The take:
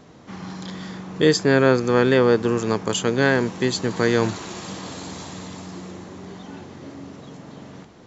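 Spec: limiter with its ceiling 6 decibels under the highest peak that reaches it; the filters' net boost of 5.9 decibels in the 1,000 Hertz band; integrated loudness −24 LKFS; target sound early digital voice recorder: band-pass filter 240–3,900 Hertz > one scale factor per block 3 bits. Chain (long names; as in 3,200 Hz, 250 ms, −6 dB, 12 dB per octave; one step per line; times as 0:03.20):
parametric band 1,000 Hz +7.5 dB
brickwall limiter −6.5 dBFS
band-pass filter 240–3,900 Hz
one scale factor per block 3 bits
level −2.5 dB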